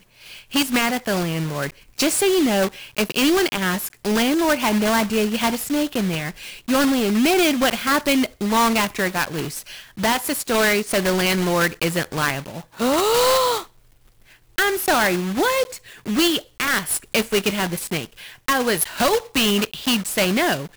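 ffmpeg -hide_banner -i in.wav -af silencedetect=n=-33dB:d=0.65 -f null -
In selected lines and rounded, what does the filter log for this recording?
silence_start: 13.64
silence_end: 14.58 | silence_duration: 0.94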